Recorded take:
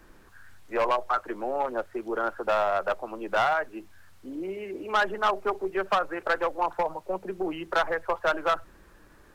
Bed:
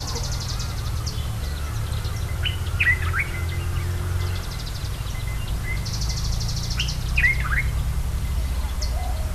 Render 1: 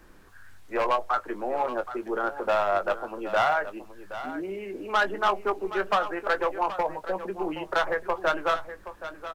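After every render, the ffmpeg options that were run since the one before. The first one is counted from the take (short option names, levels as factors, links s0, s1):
-filter_complex "[0:a]asplit=2[s0][s1];[s1]adelay=20,volume=0.299[s2];[s0][s2]amix=inputs=2:normalize=0,aecho=1:1:773:0.237"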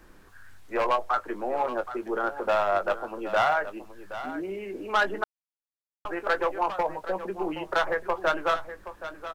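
-filter_complex "[0:a]asplit=3[s0][s1][s2];[s0]atrim=end=5.24,asetpts=PTS-STARTPTS,afade=t=out:st=5.236:d=0.004:c=hsin[s3];[s1]atrim=start=5.24:end=6.05,asetpts=PTS-STARTPTS,volume=0[s4];[s2]atrim=start=6.05,asetpts=PTS-STARTPTS,afade=t=in:d=0.004:c=hsin[s5];[s3][s4][s5]concat=n=3:v=0:a=1"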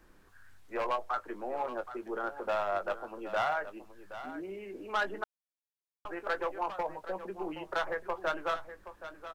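-af "volume=0.422"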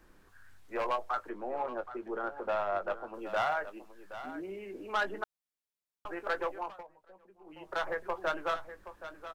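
-filter_complex "[0:a]asettb=1/sr,asplit=3[s0][s1][s2];[s0]atrim=end=1.294[s3];[s1]atrim=start=1.29:end=3.14,asetpts=PTS-STARTPTS,afade=t=in:d=0.004:c=qsin,afade=t=out:st=1.846:d=0.004:c=qsin,highshelf=f=4500:g=-11.5[s4];[s2]atrim=start=3.136[s5];[s3][s4]acrossfade=d=0.004:c1=hsin:c2=qsin[s6];[s6][s5]acrossfade=d=0.004:c1=qsin:c2=hsin,asettb=1/sr,asplit=3[s7][s8][s9];[s7]atrim=end=3.644[s10];[s8]atrim=start=3.64:end=4.13,asetpts=PTS-STARTPTS,afade=t=in:d=0.004:c=qsin,afade=t=out:st=0.486:d=0.004:c=qsin,equalizer=f=96:t=o:w=0.91:g=-14[s11];[s9]atrim=start=4.126[s12];[s10][s11]acrossfade=d=0.004:c1=hsin:c2=qsin[s13];[s13][s12]acrossfade=d=0.004:c1=qsin:c2=hsin,asplit=3[s14][s15][s16];[s14]atrim=end=6.87,asetpts=PTS-STARTPTS,afade=t=out:st=6.45:d=0.42:silence=0.1[s17];[s15]atrim=start=6.87:end=7.44,asetpts=PTS-STARTPTS,volume=0.1[s18];[s16]atrim=start=7.44,asetpts=PTS-STARTPTS,afade=t=in:d=0.42:silence=0.1[s19];[s17][s18][s19]concat=n=3:v=0:a=1"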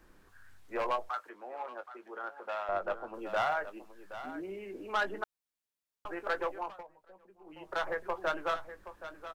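-filter_complex "[0:a]asettb=1/sr,asplit=3[s0][s1][s2];[s0]atrim=end=1.094[s3];[s1]atrim=start=1.09:end=2.69,asetpts=PTS-STARTPTS,afade=t=in:d=0.004:c=qsin,afade=t=out:st=1.596:d=0.004:c=qsin,highpass=f=1200:p=1[s4];[s2]atrim=start=2.686[s5];[s3][s4]acrossfade=d=0.004:c1=hsin:c2=qsin[s6];[s6][s5]acrossfade=d=0.004:c1=qsin:c2=hsin"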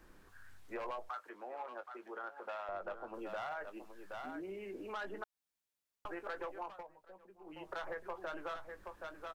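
-af "alimiter=level_in=1.5:limit=0.0631:level=0:latency=1:release=22,volume=0.668,acompressor=threshold=0.00631:ratio=2"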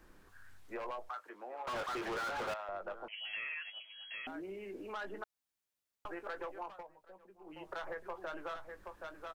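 -filter_complex "[0:a]asettb=1/sr,asplit=3[s0][s1][s2];[s0]atrim=end=1.674[s3];[s1]atrim=start=1.67:end=2.54,asetpts=PTS-STARTPTS,afade=t=in:d=0.004:c=qsin,afade=t=out:st=0.866:d=0.004:c=qsin,asplit=2[s4][s5];[s5]highpass=f=720:p=1,volume=70.8,asoftclip=type=tanh:threshold=0.0266[s6];[s4][s6]amix=inputs=2:normalize=0,lowpass=f=3400:p=1,volume=0.501[s7];[s2]atrim=start=2.536[s8];[s3][s7]acrossfade=d=0.004:c1=hsin:c2=qsin[s9];[s9][s8]acrossfade=d=0.004:c1=qsin:c2=hsin,asettb=1/sr,asplit=3[s10][s11][s12];[s10]atrim=end=3.084[s13];[s11]atrim=start=3.08:end=4.27,asetpts=PTS-STARTPTS,afade=t=in:d=0.004:c=qsin,afade=t=out:st=1.186:d=0.004:c=qsin,lowpass=f=2800:t=q:w=0.5098,lowpass=f=2800:t=q:w=0.6013,lowpass=f=2800:t=q:w=0.9,lowpass=f=2800:t=q:w=2.563,afreqshift=-3300[s14];[s12]atrim=start=4.266[s15];[s13][s14]acrossfade=d=0.004:c1=hsin:c2=qsin[s16];[s16][s15]acrossfade=d=0.004:c1=qsin:c2=hsin"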